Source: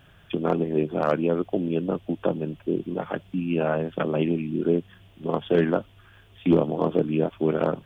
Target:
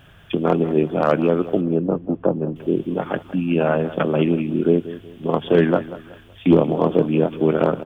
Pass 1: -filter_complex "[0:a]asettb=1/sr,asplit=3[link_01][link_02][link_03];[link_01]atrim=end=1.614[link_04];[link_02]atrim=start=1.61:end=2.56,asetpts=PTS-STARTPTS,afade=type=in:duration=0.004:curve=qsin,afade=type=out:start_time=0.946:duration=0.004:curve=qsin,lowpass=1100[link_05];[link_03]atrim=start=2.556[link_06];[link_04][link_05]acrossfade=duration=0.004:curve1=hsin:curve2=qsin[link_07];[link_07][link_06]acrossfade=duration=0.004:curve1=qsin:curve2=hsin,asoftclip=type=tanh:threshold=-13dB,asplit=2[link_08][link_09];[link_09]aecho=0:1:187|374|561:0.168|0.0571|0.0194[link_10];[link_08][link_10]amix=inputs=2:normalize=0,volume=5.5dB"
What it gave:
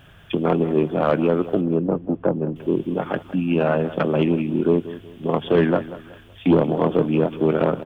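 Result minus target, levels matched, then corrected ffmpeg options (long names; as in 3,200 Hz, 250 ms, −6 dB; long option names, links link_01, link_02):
soft clipping: distortion +19 dB
-filter_complex "[0:a]asettb=1/sr,asplit=3[link_01][link_02][link_03];[link_01]atrim=end=1.614[link_04];[link_02]atrim=start=1.61:end=2.56,asetpts=PTS-STARTPTS,afade=type=in:duration=0.004:curve=qsin,afade=type=out:start_time=0.946:duration=0.004:curve=qsin,lowpass=1100[link_05];[link_03]atrim=start=2.556[link_06];[link_04][link_05]acrossfade=duration=0.004:curve1=hsin:curve2=qsin[link_07];[link_07][link_06]acrossfade=duration=0.004:curve1=qsin:curve2=hsin,asoftclip=type=tanh:threshold=-1.5dB,asplit=2[link_08][link_09];[link_09]aecho=0:1:187|374|561:0.168|0.0571|0.0194[link_10];[link_08][link_10]amix=inputs=2:normalize=0,volume=5.5dB"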